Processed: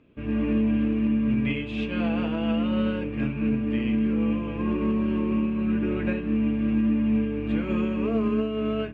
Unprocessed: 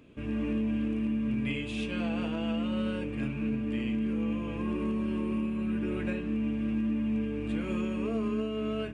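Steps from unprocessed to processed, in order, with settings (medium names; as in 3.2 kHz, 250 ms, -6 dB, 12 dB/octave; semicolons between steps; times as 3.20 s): low-pass 3.1 kHz 12 dB/octave; upward expansion 1.5:1, over -49 dBFS; trim +7.5 dB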